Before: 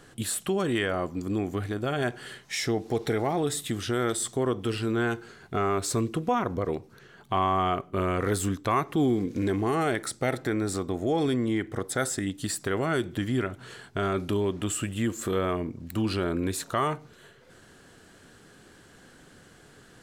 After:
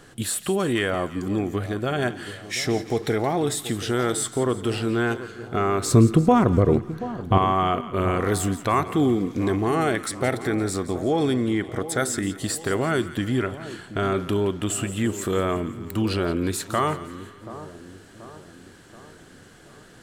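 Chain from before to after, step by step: 5.86–7.38 s: bass shelf 430 Hz +12 dB; two-band feedback delay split 1.1 kHz, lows 731 ms, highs 171 ms, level -14 dB; trim +3.5 dB

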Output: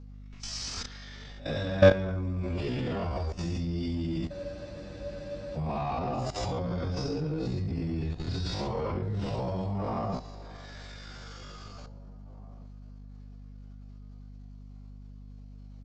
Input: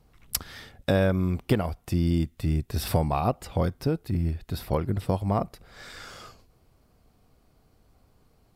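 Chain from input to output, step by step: phase randomisation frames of 200 ms; in parallel at -4 dB: hard clipper -23.5 dBFS, distortion -10 dB; on the sum: treble shelf 3.3 kHz +5.5 dB; on a send: feedback echo behind a band-pass 162 ms, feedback 63%, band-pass 630 Hz, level -16 dB; on the sum: level held to a coarse grid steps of 17 dB; steep low-pass 6.8 kHz 48 dB/octave; echo from a far wall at 230 m, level -25 dB; tempo 0.54×; hum 50 Hz, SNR 13 dB; spectral freeze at 4.35 s, 1.22 s; trim +3 dB

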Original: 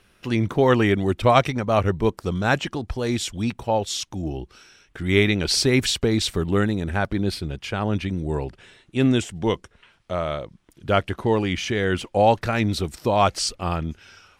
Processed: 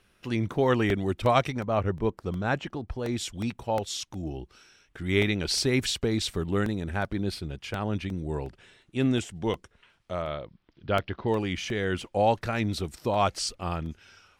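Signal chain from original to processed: 1.64–3.17 s: treble shelf 3.5 kHz -11 dB; 10.22–11.28 s: steep low-pass 5.1 kHz 48 dB/octave; crackling interface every 0.36 s, samples 64, repeat, from 0.54 s; trim -6 dB

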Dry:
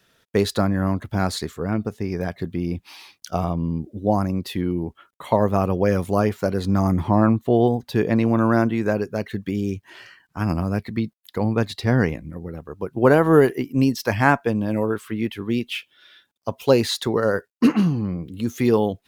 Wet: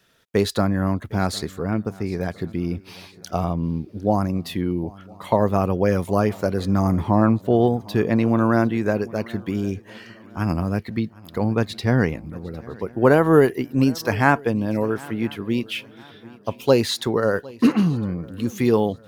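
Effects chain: shuffle delay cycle 1008 ms, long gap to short 3:1, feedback 35%, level -22.5 dB

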